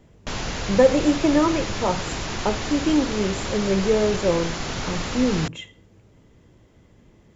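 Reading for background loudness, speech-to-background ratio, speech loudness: -29.0 LUFS, 6.0 dB, -23.0 LUFS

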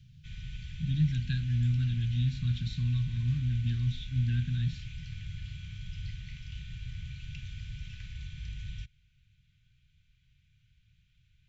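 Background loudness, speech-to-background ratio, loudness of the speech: -43.0 LUFS, 12.0 dB, -31.0 LUFS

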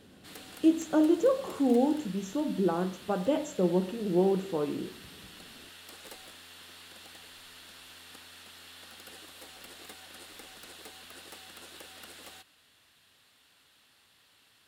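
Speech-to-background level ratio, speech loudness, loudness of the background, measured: 19.0 dB, -28.5 LUFS, -47.5 LUFS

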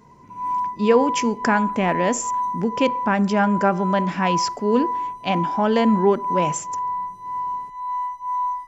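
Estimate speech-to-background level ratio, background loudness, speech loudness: 5.0 dB, -26.5 LUFS, -21.5 LUFS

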